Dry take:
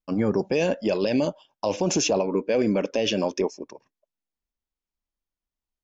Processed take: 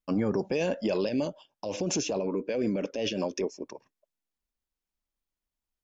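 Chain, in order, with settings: peak limiter -19 dBFS, peak gain reduction 7.5 dB; 1.09–3.65 s: rotary cabinet horn 5.5 Hz

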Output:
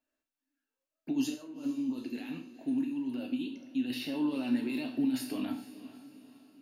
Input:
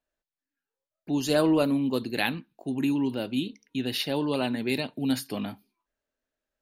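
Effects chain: bass shelf 190 Hz -7.5 dB; compressor with a negative ratio -31 dBFS, ratio -0.5; peak limiter -26 dBFS, peak gain reduction 9.5 dB; feedback comb 61 Hz, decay 0.4 s, harmonics all, mix 70%; small resonant body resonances 270/2700 Hz, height 12 dB, ringing for 50 ms; 1.34–3.90 s: flange 1.8 Hz, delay 0.6 ms, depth 4 ms, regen +65%; echo that smears into a reverb 450 ms, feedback 47%, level -15 dB; gated-style reverb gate 170 ms falling, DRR 4.5 dB

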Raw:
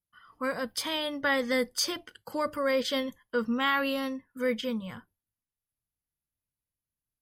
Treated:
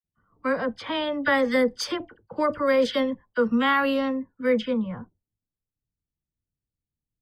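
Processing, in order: level-controlled noise filter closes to 370 Hz, open at -24 dBFS; treble shelf 3.1 kHz -11.5 dB; phase dispersion lows, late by 41 ms, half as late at 1.5 kHz; trim +7 dB

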